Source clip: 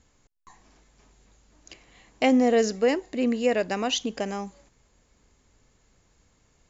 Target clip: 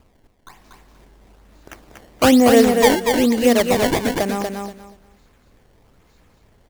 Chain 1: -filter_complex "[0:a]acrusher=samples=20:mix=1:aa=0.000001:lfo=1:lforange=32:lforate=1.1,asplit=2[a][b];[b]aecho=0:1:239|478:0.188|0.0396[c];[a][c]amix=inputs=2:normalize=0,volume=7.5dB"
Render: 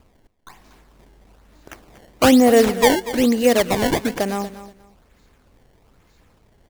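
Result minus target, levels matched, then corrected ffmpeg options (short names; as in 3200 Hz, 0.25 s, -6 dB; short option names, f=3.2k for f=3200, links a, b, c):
echo-to-direct -10 dB
-filter_complex "[0:a]acrusher=samples=20:mix=1:aa=0.000001:lfo=1:lforange=32:lforate=1.1,asplit=2[a][b];[b]aecho=0:1:239|478|717:0.596|0.125|0.0263[c];[a][c]amix=inputs=2:normalize=0,volume=7.5dB"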